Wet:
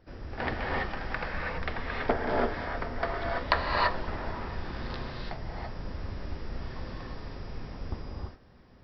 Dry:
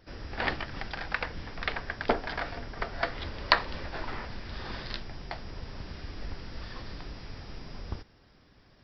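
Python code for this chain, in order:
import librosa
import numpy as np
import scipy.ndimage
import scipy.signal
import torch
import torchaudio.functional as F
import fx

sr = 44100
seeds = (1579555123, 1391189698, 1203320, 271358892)

y = fx.high_shelf(x, sr, hz=2200.0, db=-11.5)
y = fx.rev_gated(y, sr, seeds[0], gate_ms=360, shape='rising', drr_db=-2.5)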